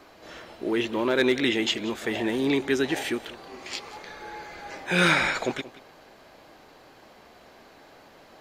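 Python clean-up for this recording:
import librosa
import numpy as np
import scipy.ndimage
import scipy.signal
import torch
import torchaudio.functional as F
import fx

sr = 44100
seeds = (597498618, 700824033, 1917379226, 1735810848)

y = fx.fix_declip(x, sr, threshold_db=-12.0)
y = fx.fix_echo_inverse(y, sr, delay_ms=180, level_db=-17.5)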